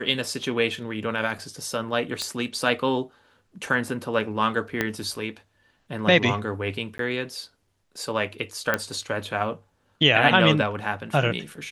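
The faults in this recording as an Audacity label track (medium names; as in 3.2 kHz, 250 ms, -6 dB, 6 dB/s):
2.220000	2.220000	pop -13 dBFS
4.810000	4.810000	pop -9 dBFS
6.980000	6.990000	dropout 13 ms
8.740000	8.740000	pop -8 dBFS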